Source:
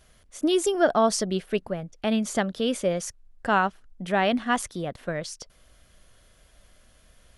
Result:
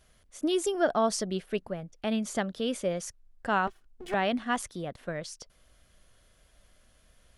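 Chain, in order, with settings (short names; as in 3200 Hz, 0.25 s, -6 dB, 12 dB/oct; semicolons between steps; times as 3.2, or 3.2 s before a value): 3.67–4.14 minimum comb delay 2.7 ms; gain -5 dB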